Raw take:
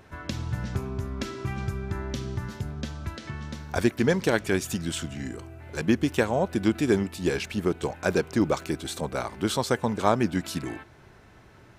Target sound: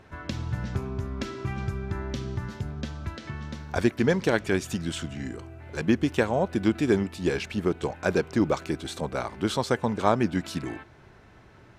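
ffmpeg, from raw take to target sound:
-af "highshelf=f=8900:g=-11.5"

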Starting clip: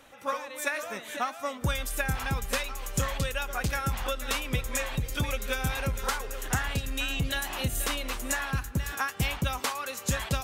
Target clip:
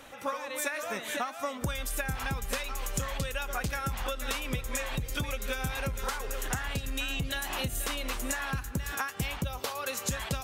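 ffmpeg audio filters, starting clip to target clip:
-filter_complex "[0:a]asettb=1/sr,asplit=3[s0][s1][s2];[s0]atrim=end=9.444[s3];[s1]atrim=start=9.44:end=9.87,asetpts=PTS-STARTPTS,afade=t=in:d=0.004:c=qsin,afade=t=out:st=0.426:d=0.004:c=qsin,equalizer=f=125:t=o:w=1:g=5,equalizer=f=250:t=o:w=1:g=-8,equalizer=f=500:t=o:w=1:g=4,equalizer=f=1000:t=o:w=1:g=-5,equalizer=f=2000:t=o:w=1:g=-7,equalizer=f=8000:t=o:w=1:g=-7[s4];[s2]atrim=start=9.866[s5];[s3][s4]acrossfade=d=0.004:c1=hsin:c2=qsin[s6];[s6][s5]acrossfade=d=0.004:c1=qsin:c2=hsin,acompressor=threshold=0.0178:ratio=5,volume=1.78"

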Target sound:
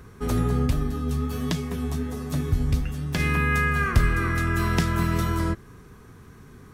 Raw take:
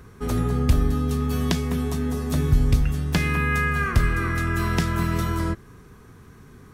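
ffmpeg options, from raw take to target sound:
-filter_complex "[0:a]asplit=3[s0][s1][s2];[s0]afade=t=out:st=0.66:d=0.02[s3];[s1]flanger=delay=6.2:depth=7.4:regen=42:speed=1.3:shape=triangular,afade=t=in:st=0.66:d=0.02,afade=t=out:st=3.18:d=0.02[s4];[s2]afade=t=in:st=3.18:d=0.02[s5];[s3][s4][s5]amix=inputs=3:normalize=0"

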